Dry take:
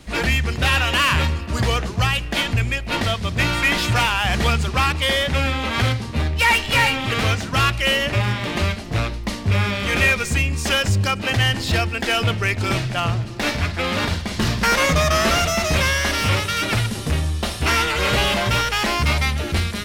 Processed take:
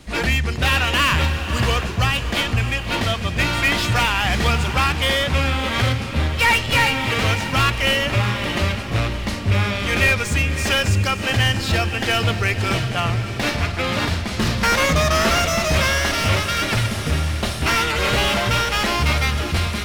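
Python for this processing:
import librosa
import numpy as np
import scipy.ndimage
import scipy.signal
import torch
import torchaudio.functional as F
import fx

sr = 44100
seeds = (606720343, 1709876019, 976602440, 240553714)

y = fx.tracing_dist(x, sr, depth_ms=0.024)
y = fx.echo_diffused(y, sr, ms=610, feedback_pct=45, wet_db=-10)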